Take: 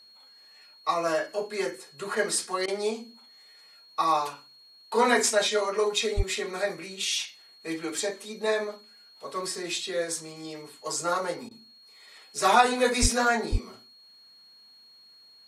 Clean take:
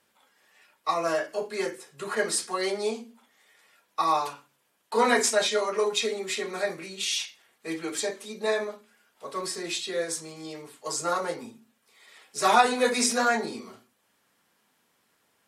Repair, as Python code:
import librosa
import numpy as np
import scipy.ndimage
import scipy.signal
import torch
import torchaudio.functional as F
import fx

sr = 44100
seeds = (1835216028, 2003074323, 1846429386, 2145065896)

y = fx.notch(x, sr, hz=4300.0, q=30.0)
y = fx.highpass(y, sr, hz=140.0, slope=24, at=(6.16, 6.28), fade=0.02)
y = fx.highpass(y, sr, hz=140.0, slope=24, at=(13.01, 13.13), fade=0.02)
y = fx.highpass(y, sr, hz=140.0, slope=24, at=(13.51, 13.63), fade=0.02)
y = fx.fix_interpolate(y, sr, at_s=(2.66, 11.49), length_ms=19.0)